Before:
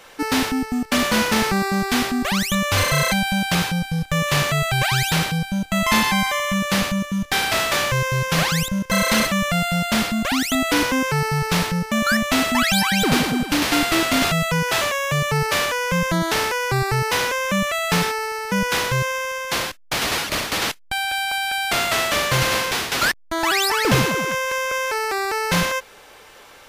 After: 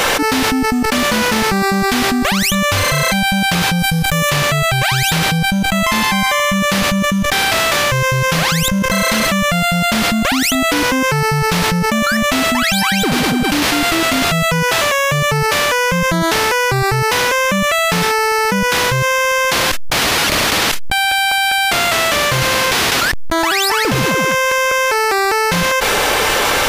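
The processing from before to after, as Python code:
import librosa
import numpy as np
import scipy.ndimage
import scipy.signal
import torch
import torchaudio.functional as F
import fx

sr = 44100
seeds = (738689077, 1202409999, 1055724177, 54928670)

y = fx.high_shelf(x, sr, hz=7700.0, db=8.5, at=(3.79, 4.3))
y = fx.env_flatten(y, sr, amount_pct=100)
y = F.gain(torch.from_numpy(y), -1.5).numpy()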